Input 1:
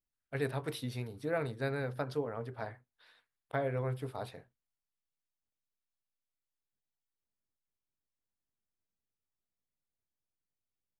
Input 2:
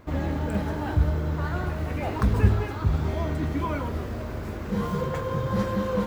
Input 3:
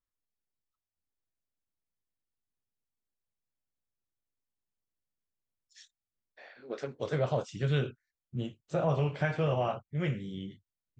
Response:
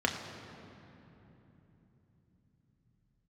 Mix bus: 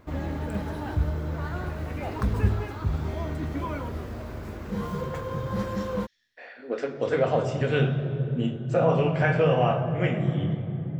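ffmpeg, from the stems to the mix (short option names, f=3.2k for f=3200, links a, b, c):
-filter_complex "[0:a]volume=-12.5dB[a];[1:a]volume=-3.5dB[b];[2:a]volume=-0.5dB,asplit=2[c][d];[d]volume=-3.5dB[e];[3:a]atrim=start_sample=2205[f];[e][f]afir=irnorm=-1:irlink=0[g];[a][b][c][g]amix=inputs=4:normalize=0"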